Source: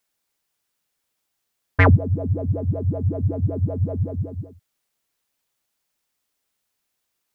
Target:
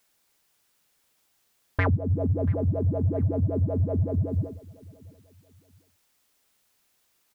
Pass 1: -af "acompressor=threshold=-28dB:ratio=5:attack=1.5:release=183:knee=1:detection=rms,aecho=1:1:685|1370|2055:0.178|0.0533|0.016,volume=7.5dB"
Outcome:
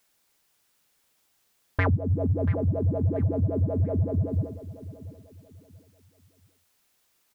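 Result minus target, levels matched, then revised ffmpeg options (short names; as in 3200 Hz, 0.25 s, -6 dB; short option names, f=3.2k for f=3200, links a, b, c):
echo-to-direct +7 dB
-af "acompressor=threshold=-28dB:ratio=5:attack=1.5:release=183:knee=1:detection=rms,aecho=1:1:685|1370:0.0794|0.0238,volume=7.5dB"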